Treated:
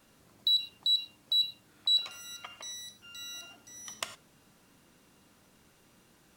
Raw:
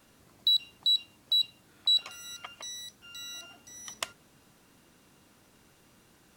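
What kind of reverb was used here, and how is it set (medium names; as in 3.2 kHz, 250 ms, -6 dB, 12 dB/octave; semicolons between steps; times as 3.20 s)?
gated-style reverb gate 130 ms flat, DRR 10 dB; trim -2 dB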